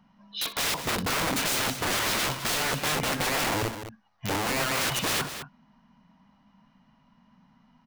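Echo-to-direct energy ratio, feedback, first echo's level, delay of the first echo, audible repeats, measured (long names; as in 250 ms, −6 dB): −9.5 dB, repeats not evenly spaced, −16.0 dB, 62 ms, 2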